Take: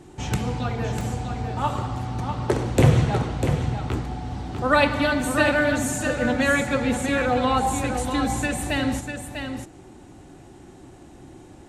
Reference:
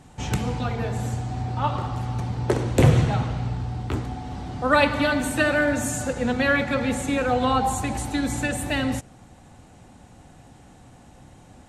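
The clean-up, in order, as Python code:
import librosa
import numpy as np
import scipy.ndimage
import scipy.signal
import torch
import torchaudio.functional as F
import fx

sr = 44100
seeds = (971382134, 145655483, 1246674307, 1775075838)

y = fx.fix_interpolate(x, sr, at_s=(1.01,), length_ms=2.6)
y = fx.noise_reduce(y, sr, print_start_s=10.7, print_end_s=11.2, reduce_db=6.0)
y = fx.fix_echo_inverse(y, sr, delay_ms=647, level_db=-7.0)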